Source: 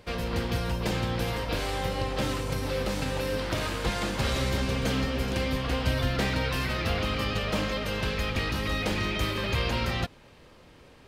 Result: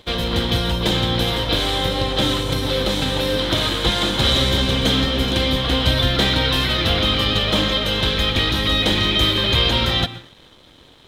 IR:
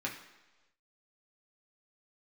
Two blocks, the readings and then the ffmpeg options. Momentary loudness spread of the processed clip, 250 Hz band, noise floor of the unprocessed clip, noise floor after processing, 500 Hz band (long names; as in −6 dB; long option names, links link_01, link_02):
4 LU, +9.0 dB, −53 dBFS, −48 dBFS, +8.0 dB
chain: -filter_complex "[0:a]asplit=2[link_01][link_02];[1:a]atrim=start_sample=2205,adelay=121[link_03];[link_02][link_03]afir=irnorm=-1:irlink=0,volume=-17.5dB[link_04];[link_01][link_04]amix=inputs=2:normalize=0,aeval=exprs='sgn(val(0))*max(abs(val(0))-0.00158,0)':channel_layout=same,superequalizer=6b=1.41:13b=3.55,volume=8dB"